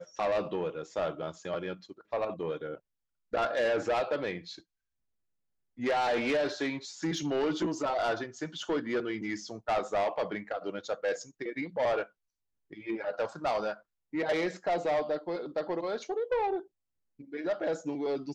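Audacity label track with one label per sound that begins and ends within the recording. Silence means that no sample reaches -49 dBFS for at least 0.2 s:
3.330000	4.600000	sound
5.780000	12.060000	sound
12.710000	13.800000	sound
14.130000	16.660000	sound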